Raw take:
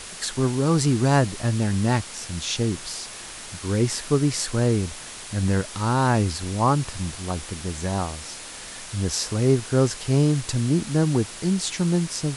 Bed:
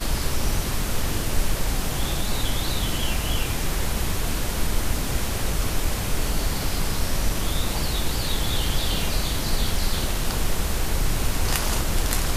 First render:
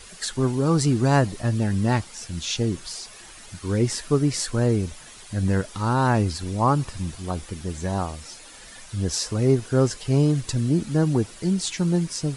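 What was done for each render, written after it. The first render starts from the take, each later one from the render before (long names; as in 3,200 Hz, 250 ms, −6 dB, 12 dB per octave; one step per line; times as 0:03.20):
broadband denoise 10 dB, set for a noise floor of −38 dBFS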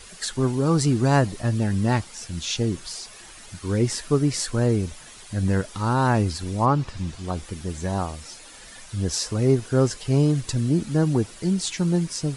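0:06.65–0:07.43: low-pass filter 4,300 Hz → 10,000 Hz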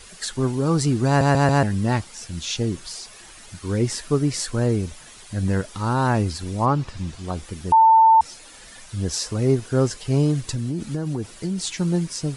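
0:01.07: stutter in place 0.14 s, 4 plays
0:07.72–0:08.21: beep over 894 Hz −9.5 dBFS
0:10.39–0:11.68: downward compressor 10 to 1, threshold −21 dBFS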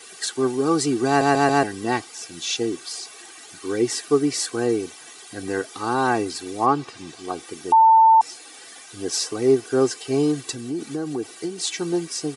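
high-pass filter 180 Hz 24 dB per octave
comb filter 2.6 ms, depth 78%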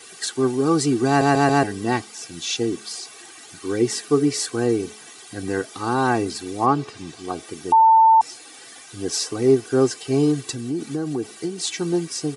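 bass and treble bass +6 dB, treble 0 dB
hum removal 213.3 Hz, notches 3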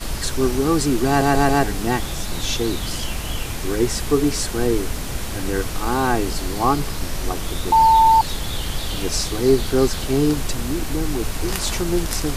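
mix in bed −2 dB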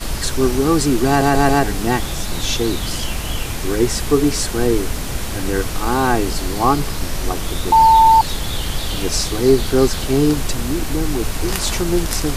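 level +3 dB
brickwall limiter −2 dBFS, peak gain reduction 2 dB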